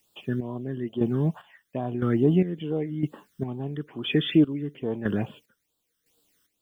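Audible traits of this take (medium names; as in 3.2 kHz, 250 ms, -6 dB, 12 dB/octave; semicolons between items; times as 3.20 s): a quantiser's noise floor 12-bit, dither triangular; chopped level 0.99 Hz, depth 65%, duty 40%; phasing stages 12, 2.3 Hz, lowest notch 740–2100 Hz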